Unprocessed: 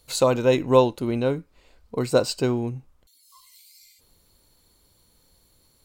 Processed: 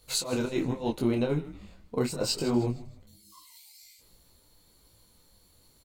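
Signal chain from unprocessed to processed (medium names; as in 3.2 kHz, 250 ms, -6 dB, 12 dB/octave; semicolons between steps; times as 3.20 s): compressor with a negative ratio -23 dBFS, ratio -0.5; frequency-shifting echo 156 ms, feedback 40%, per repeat -110 Hz, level -16 dB; detune thickener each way 42 cents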